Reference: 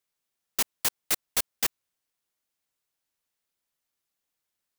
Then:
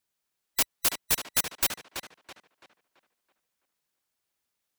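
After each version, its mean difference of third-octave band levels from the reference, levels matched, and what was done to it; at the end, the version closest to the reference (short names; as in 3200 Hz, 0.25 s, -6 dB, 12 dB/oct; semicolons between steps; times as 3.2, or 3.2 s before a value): 3.0 dB: band-swap scrambler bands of 2000 Hz; on a send: tape echo 0.332 s, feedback 40%, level -5 dB, low-pass 3900 Hz; on the sum: gain +1 dB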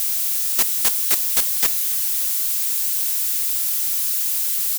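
4.5 dB: switching spikes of -21 dBFS; feedback echo 0.282 s, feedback 60%, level -19 dB; gain +3.5 dB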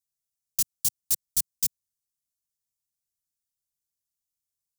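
10.0 dB: Chebyshev band-stop 130–6300 Hz, order 2; sample leveller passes 1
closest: first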